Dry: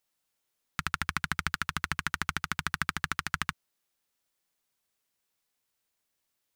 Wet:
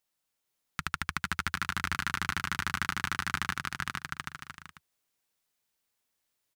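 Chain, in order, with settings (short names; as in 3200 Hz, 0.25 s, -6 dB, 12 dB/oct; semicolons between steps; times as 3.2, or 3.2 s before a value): bouncing-ball echo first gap 0.46 s, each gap 0.7×, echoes 5; gain -2 dB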